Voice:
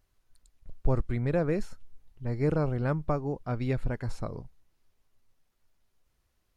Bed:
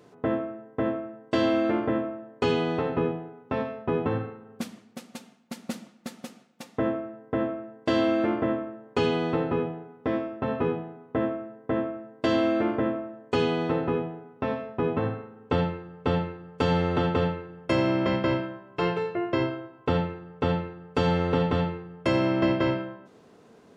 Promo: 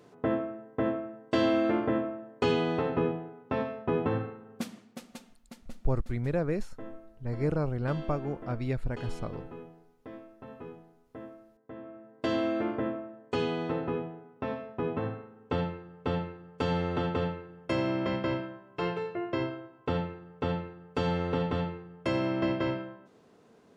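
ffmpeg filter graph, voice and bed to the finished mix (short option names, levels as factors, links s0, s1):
-filter_complex "[0:a]adelay=5000,volume=0.794[s0];[1:a]volume=3.35,afade=t=out:st=4.85:d=0.89:silence=0.158489,afade=t=in:st=11.79:d=0.44:silence=0.237137[s1];[s0][s1]amix=inputs=2:normalize=0"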